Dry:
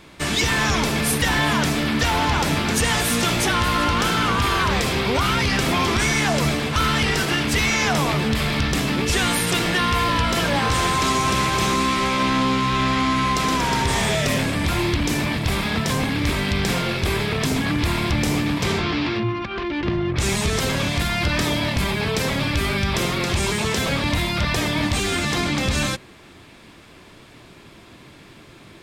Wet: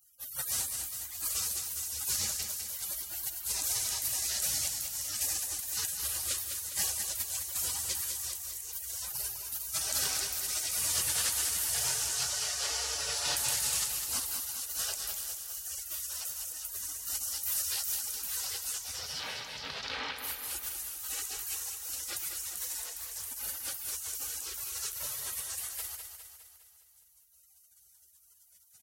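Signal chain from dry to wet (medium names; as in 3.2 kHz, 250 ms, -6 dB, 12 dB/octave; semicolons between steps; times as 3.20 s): high-pass 320 Hz 12 dB/octave; spectral gate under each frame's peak -30 dB weak; 17.23–18.01 s: treble shelf 7.7 kHz +6 dB; feedback delay 204 ms, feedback 55%, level -7 dB; 22.86–23.26 s: loudspeaker Doppler distortion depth 0.38 ms; trim +8 dB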